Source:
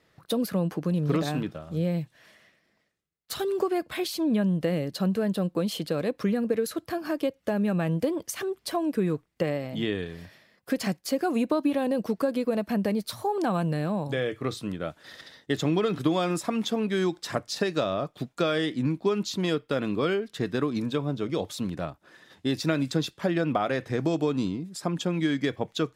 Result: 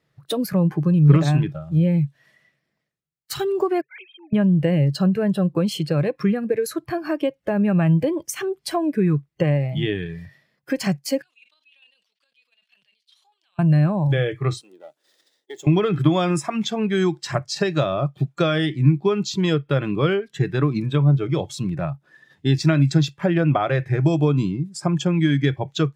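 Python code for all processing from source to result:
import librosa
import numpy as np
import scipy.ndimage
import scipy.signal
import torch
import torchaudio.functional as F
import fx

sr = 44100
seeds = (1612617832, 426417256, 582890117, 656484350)

y = fx.chain(x, sr, fx.sine_speech(),
    fx.highpass(hz=1400.0, slope=12), at=(3.81, 4.33))
y = fx.chain(y, sr, fx.chopper(hz=10.0, depth_pct=60, duty_pct=20),
    fx.ladder_bandpass(hz=3500.0, resonance_pct=55),
    fx.sustainer(db_per_s=70.0), at=(11.22, 13.59))
y = fx.chain(y, sr, fx.halfwave_gain(db=-12.0),
    fx.highpass(hz=340.0, slope=24),
    fx.peak_eq(hz=1400.0, db=-11.5, octaves=2.6), at=(14.61, 15.67))
y = fx.noise_reduce_blind(y, sr, reduce_db=12)
y = fx.peak_eq(y, sr, hz=140.0, db=13.0, octaves=0.4)
y = F.gain(torch.from_numpy(y), 5.0).numpy()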